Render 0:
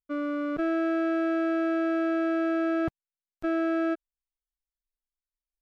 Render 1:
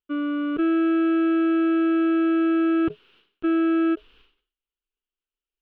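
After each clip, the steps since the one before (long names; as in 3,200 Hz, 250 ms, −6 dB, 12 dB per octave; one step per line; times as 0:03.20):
drawn EQ curve 160 Hz 0 dB, 420 Hz +13 dB, 630 Hz −6 dB, 1,400 Hz +7 dB, 2,000 Hz −1 dB, 2,900 Hz +14 dB, 7,100 Hz −29 dB
level that may fall only so fast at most 120 dB per second
level −2.5 dB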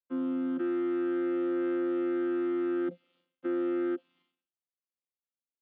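channel vocoder with a chord as carrier bare fifth, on F3
low-shelf EQ 220 Hz −6 dB
level −5.5 dB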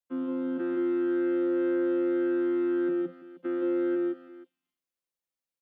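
multi-tap delay 128/168/174/328/481 ms −12/−4/−7/−18.5/−17 dB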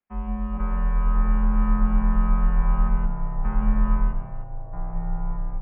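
single-sideband voice off tune −310 Hz 300–2,700 Hz
delay with pitch and tempo change per echo 390 ms, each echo −4 semitones, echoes 3, each echo −6 dB
level +8.5 dB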